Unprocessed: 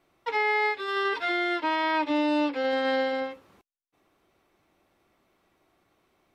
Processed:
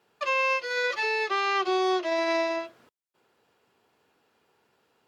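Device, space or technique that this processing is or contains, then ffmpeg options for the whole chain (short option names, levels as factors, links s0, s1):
nightcore: -af "highpass=88,asetrate=55125,aresample=44100"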